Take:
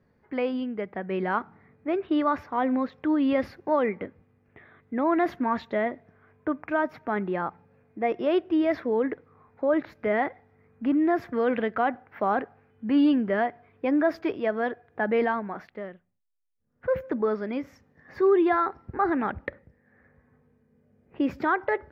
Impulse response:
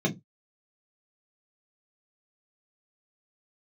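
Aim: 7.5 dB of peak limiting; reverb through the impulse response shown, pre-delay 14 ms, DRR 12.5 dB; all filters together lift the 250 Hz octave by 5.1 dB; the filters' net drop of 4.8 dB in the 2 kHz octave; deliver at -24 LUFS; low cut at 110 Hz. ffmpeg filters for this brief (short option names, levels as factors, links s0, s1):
-filter_complex "[0:a]highpass=110,equalizer=f=250:t=o:g=6.5,equalizer=f=2000:t=o:g=-6.5,alimiter=limit=0.15:level=0:latency=1,asplit=2[s0][s1];[1:a]atrim=start_sample=2205,adelay=14[s2];[s1][s2]afir=irnorm=-1:irlink=0,volume=0.075[s3];[s0][s3]amix=inputs=2:normalize=0,volume=1.12"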